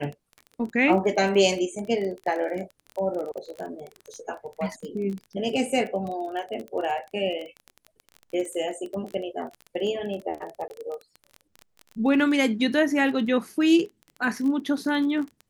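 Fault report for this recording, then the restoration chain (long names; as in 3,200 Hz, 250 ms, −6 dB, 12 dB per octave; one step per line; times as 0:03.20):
surface crackle 21 per second −31 dBFS
0:10.68–0:10.70: drop-out 20 ms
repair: click removal
repair the gap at 0:10.68, 20 ms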